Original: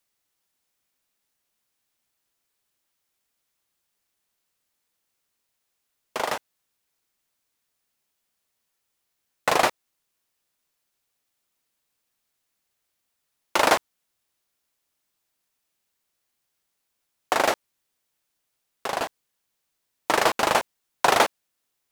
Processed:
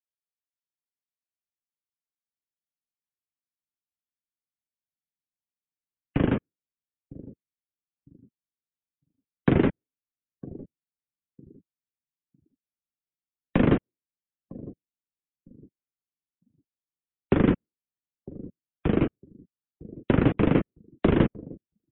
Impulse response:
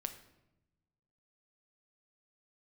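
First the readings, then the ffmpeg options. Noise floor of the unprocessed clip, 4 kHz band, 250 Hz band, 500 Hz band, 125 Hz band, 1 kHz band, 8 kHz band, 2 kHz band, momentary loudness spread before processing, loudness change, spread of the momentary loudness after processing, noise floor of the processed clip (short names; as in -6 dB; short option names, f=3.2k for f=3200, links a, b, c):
-78 dBFS, -15.0 dB, +13.5 dB, -1.0 dB, +20.0 dB, -13.5 dB, under -40 dB, -10.0 dB, 13 LU, -1.0 dB, 20 LU, under -85 dBFS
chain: -filter_complex "[0:a]acrossover=split=490|1900[a][b][c];[a]acompressor=threshold=-38dB:ratio=4[d];[b]acompressor=threshold=-25dB:ratio=4[e];[c]acompressor=threshold=-34dB:ratio=4[f];[d][e][f]amix=inputs=3:normalize=0,asplit=2[g][h];[h]adelay=955,lowpass=f=1.2k:p=1,volume=-18.5dB,asplit=2[i][j];[j]adelay=955,lowpass=f=1.2k:p=1,volume=0.36,asplit=2[k][l];[l]adelay=955,lowpass=f=1.2k:p=1,volume=0.36[m];[i][k][m]amix=inputs=3:normalize=0[n];[g][n]amix=inputs=2:normalize=0,highpass=f=530:t=q:w=0.5412,highpass=f=530:t=q:w=1.307,lowpass=f=3.6k:t=q:w=0.5176,lowpass=f=3.6k:t=q:w=0.7071,lowpass=f=3.6k:t=q:w=1.932,afreqshift=-350,asubboost=boost=11:cutoff=230,afftdn=nr=27:nf=-43"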